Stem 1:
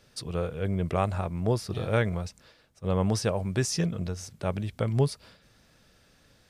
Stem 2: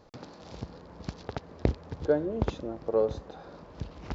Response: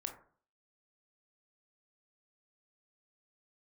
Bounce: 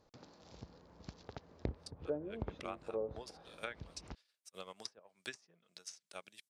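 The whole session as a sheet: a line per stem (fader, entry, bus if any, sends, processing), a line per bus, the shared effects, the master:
−4.5 dB, 1.70 s, no send, high-pass filter 150 Hz 24 dB per octave; first difference; transient designer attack +10 dB, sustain −9 dB
−13.0 dB, 0.00 s, no send, high-shelf EQ 5,300 Hz +9 dB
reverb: not used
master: treble cut that deepens with the level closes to 850 Hz, closed at −34 dBFS

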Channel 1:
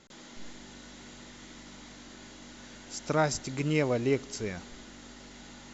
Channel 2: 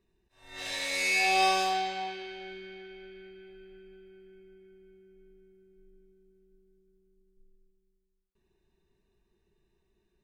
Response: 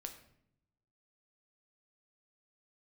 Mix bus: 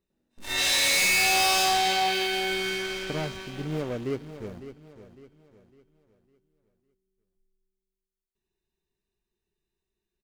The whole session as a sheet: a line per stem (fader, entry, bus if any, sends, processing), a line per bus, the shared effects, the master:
−2.5 dB, 0.00 s, no send, echo send −12.5 dB, running median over 41 samples; noise gate with hold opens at −39 dBFS
−3.0 dB, 0.00 s, no send, echo send −23.5 dB, high-shelf EQ 2,600 Hz +10 dB; leveller curve on the samples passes 5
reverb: not used
echo: repeating echo 555 ms, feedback 38%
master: brickwall limiter −19.5 dBFS, peak gain reduction 6.5 dB

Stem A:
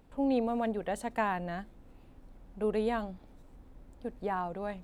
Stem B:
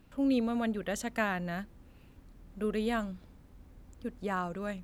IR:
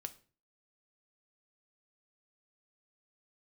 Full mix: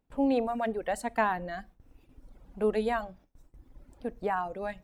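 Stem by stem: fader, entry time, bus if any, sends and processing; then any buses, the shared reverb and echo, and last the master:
+1.0 dB, 0.00 s, send −4 dB, reverb reduction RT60 1.3 s
−15.5 dB, 0.00 s, polarity flipped, no send, no processing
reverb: on, RT60 0.40 s, pre-delay 3 ms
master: noise gate with hold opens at −46 dBFS

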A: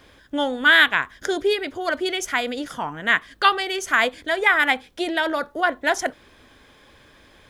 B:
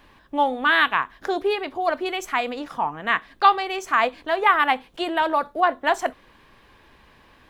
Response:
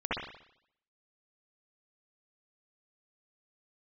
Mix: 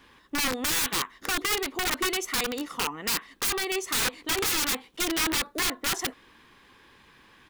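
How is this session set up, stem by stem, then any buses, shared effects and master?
−7.5 dB, 0.00 s, no send, no processing
−2.0 dB, 1.2 ms, polarity flipped, no send, no processing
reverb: not used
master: low-shelf EQ 95 Hz −11 dB; wrap-around overflow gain 20.5 dB; parametric band 620 Hz −10.5 dB 0.51 octaves

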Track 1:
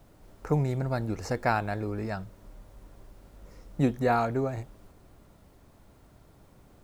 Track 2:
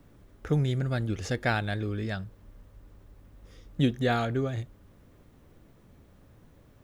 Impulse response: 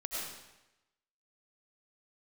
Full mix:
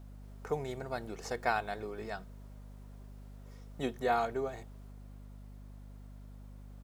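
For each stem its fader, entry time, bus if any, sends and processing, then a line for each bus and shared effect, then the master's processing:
−5.0 dB, 0.00 s, no send, bass and treble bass −14 dB, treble +1 dB
−12.0 dB, 2.7 ms, no send, high-pass filter 330 Hz 24 dB per octave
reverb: not used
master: mains hum 50 Hz, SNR 10 dB

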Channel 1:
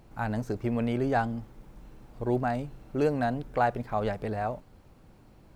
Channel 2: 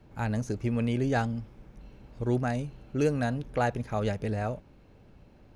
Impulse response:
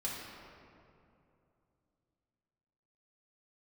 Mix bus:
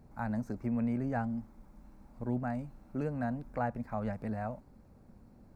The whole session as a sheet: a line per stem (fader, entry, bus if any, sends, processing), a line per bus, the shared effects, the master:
−8.0 dB, 0.00 s, no send, parametric band 3,000 Hz −11 dB 0.56 octaves; downward compressor, threshold −28 dBFS, peak gain reduction 8 dB
−5.0 dB, 0.00 s, polarity flipped, no send, low-pass filter 1,000 Hz 12 dB per octave; parametric band 320 Hz −8.5 dB 1 octave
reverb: not used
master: parametric band 230 Hz +9 dB 0.6 octaves

